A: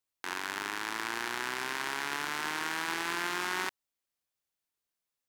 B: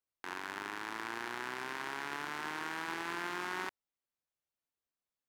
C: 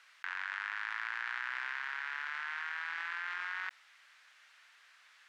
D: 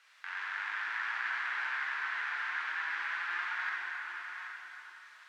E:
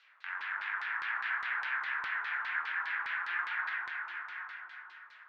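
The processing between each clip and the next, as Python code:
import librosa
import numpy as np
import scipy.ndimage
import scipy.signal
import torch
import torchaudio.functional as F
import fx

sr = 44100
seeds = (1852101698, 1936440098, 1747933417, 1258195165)

y1 = fx.high_shelf(x, sr, hz=2600.0, db=-9.0)
y1 = F.gain(torch.from_numpy(y1), -3.0).numpy()
y2 = fx.ladder_bandpass(y1, sr, hz=2000.0, resonance_pct=40)
y2 = fx.env_flatten(y2, sr, amount_pct=100)
y2 = F.gain(torch.from_numpy(y2), 8.5).numpy()
y3 = y2 + 10.0 ** (-8.0 / 20.0) * np.pad(y2, (int(781 * sr / 1000.0), 0))[:len(y2)]
y3 = fx.rev_plate(y3, sr, seeds[0], rt60_s=3.4, hf_ratio=0.6, predelay_ms=0, drr_db=-6.0)
y3 = F.gain(torch.from_numpy(y3), -4.0).numpy()
y4 = fx.filter_lfo_lowpass(y3, sr, shape='saw_down', hz=4.9, low_hz=1000.0, high_hz=4400.0, q=1.9)
y4 = F.gain(torch.from_numpy(y4), -2.5).numpy()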